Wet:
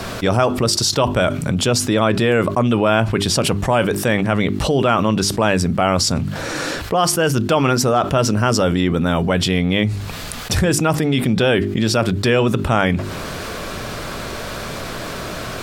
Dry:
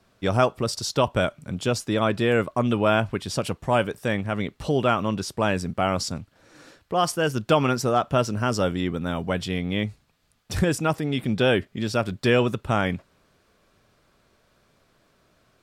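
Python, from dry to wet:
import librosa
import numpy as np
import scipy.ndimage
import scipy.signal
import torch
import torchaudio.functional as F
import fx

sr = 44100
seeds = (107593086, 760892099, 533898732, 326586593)

y = fx.hum_notches(x, sr, base_hz=50, count=8)
y = fx.env_flatten(y, sr, amount_pct=70)
y = F.gain(torch.from_numpy(y), 2.0).numpy()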